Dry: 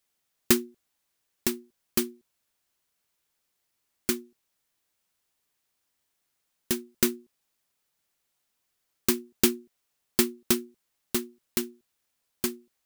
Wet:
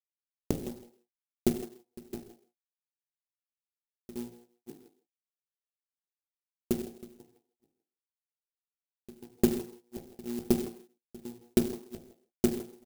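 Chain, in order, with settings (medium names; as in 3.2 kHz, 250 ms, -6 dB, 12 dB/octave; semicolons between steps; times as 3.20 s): chunks repeated in reverse 294 ms, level -13.5 dB; level rider gain up to 16 dB; hum notches 60/120/180/240/300/360/420 Hz; crossover distortion -36 dBFS; elliptic low-pass 770 Hz, stop band 40 dB; trance gate ".xxxx.xxx." 148 bpm -24 dB; speakerphone echo 160 ms, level -13 dB; reverberation, pre-delay 3 ms, DRR 4 dB; sampling jitter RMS 0.11 ms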